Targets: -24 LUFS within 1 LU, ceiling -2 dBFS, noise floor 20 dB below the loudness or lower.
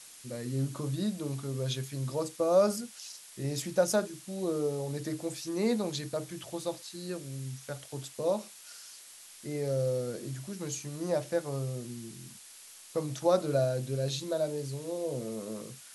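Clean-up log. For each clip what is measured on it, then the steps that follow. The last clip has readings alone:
noise floor -52 dBFS; noise floor target -53 dBFS; loudness -33.0 LUFS; peak -13.5 dBFS; loudness target -24.0 LUFS
-> denoiser 6 dB, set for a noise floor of -52 dBFS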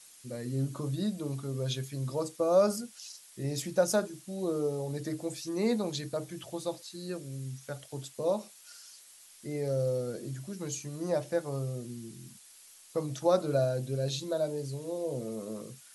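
noise floor -55 dBFS; loudness -33.0 LUFS; peak -13.5 dBFS; loudness target -24.0 LUFS
-> gain +9 dB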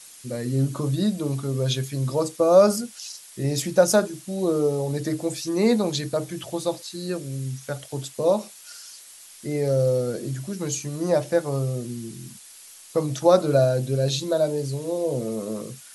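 loudness -24.0 LUFS; peak -4.5 dBFS; noise floor -46 dBFS

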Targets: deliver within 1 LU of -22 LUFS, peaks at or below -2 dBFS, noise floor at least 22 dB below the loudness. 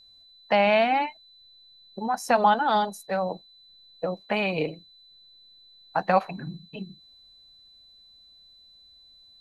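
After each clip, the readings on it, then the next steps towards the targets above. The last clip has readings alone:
steady tone 4000 Hz; tone level -52 dBFS; loudness -25.0 LUFS; peak -7.5 dBFS; loudness target -22.0 LUFS
-> notch 4000 Hz, Q 30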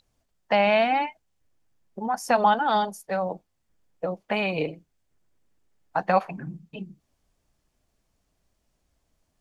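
steady tone none; loudness -25.0 LUFS; peak -7.5 dBFS; loudness target -22.0 LUFS
-> gain +3 dB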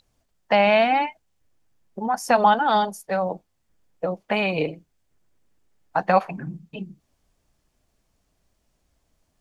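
loudness -22.0 LUFS; peak -4.5 dBFS; noise floor -72 dBFS

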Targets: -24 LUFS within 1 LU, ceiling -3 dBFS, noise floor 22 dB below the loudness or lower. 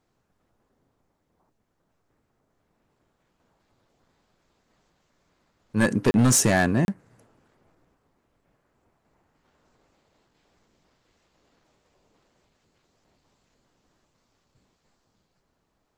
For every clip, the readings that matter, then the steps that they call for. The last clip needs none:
clipped 0.3%; flat tops at -13.5 dBFS; dropouts 2; longest dropout 31 ms; loudness -21.5 LUFS; peak -13.5 dBFS; loudness target -24.0 LUFS
-> clip repair -13.5 dBFS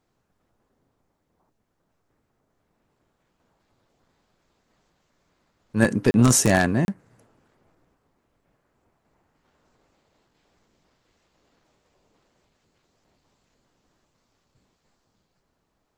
clipped 0.0%; dropouts 2; longest dropout 31 ms
-> interpolate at 6.11/6.85, 31 ms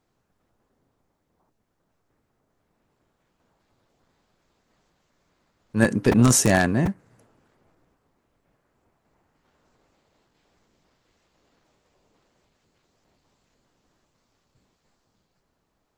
dropouts 0; loudness -20.0 LUFS; peak -4.5 dBFS; loudness target -24.0 LUFS
-> gain -4 dB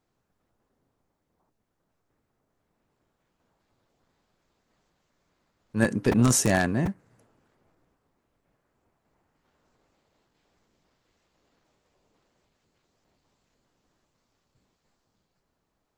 loudness -23.5 LUFS; peak -8.5 dBFS; noise floor -78 dBFS

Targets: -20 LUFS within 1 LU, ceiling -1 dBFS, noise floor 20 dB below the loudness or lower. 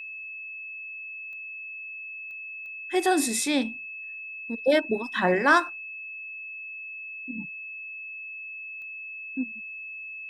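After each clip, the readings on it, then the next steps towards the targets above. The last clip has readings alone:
clicks 4; steady tone 2600 Hz; tone level -36 dBFS; loudness -29.5 LUFS; peak -7.5 dBFS; loudness target -20.0 LUFS
-> de-click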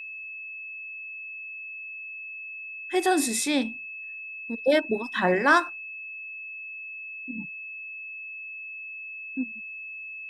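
clicks 0; steady tone 2600 Hz; tone level -36 dBFS
-> notch 2600 Hz, Q 30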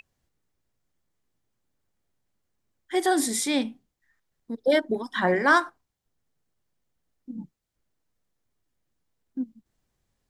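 steady tone none; loudness -25.0 LUFS; peak -7.5 dBFS; loudness target -20.0 LUFS
-> gain +5 dB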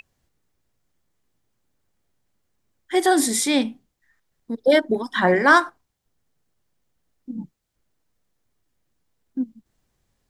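loudness -19.5 LUFS; peak -2.5 dBFS; noise floor -75 dBFS

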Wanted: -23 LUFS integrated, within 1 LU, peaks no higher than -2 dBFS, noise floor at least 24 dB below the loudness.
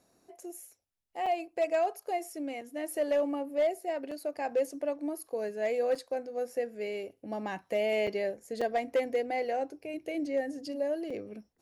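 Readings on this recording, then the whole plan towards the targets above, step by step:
clipped 0.4%; flat tops at -21.5 dBFS; dropouts 7; longest dropout 4.7 ms; loudness -33.0 LUFS; peak -21.5 dBFS; loudness target -23.0 LUFS
-> clip repair -21.5 dBFS; interpolate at 1.26/2.61/4.11/5.95/8.07/8.61/11.1, 4.7 ms; gain +10 dB

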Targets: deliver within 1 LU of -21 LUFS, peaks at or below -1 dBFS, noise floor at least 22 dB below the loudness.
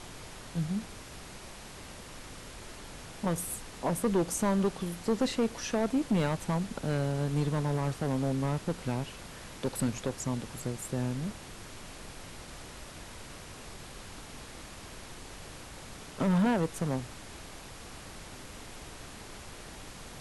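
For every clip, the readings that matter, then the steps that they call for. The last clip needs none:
clipped 1.2%; flat tops at -22.0 dBFS; noise floor -47 dBFS; noise floor target -54 dBFS; loudness -31.5 LUFS; peak -22.0 dBFS; loudness target -21.0 LUFS
-> clip repair -22 dBFS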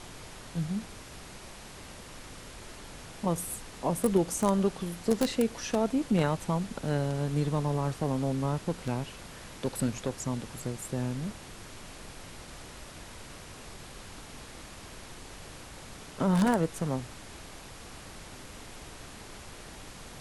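clipped 0.0%; noise floor -47 dBFS; noise floor target -53 dBFS
-> noise print and reduce 6 dB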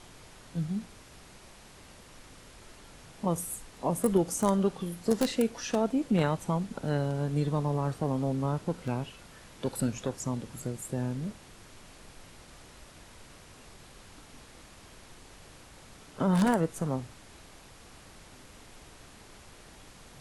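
noise floor -53 dBFS; loudness -30.5 LUFS; peak -13.0 dBFS; loudness target -21.0 LUFS
-> gain +9.5 dB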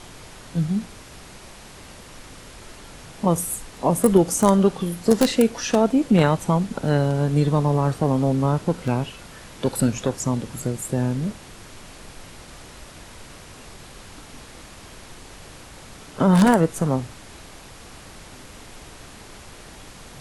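loudness -21.0 LUFS; peak -3.5 dBFS; noise floor -43 dBFS

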